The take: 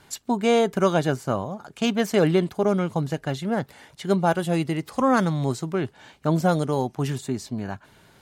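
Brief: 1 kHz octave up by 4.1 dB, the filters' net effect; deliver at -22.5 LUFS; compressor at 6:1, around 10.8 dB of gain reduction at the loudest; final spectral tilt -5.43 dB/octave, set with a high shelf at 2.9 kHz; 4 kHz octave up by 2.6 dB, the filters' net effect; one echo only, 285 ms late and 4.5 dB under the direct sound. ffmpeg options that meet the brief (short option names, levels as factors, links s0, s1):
-af "equalizer=f=1000:t=o:g=6,highshelf=f=2900:g=-7,equalizer=f=4000:t=o:g=8.5,acompressor=threshold=0.0562:ratio=6,aecho=1:1:285:0.596,volume=2.24"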